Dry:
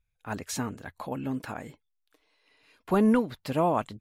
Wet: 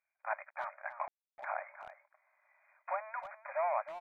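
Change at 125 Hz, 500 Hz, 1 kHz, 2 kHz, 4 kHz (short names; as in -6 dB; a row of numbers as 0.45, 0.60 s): under -40 dB, -10.0 dB, -4.5 dB, -2.0 dB, under -20 dB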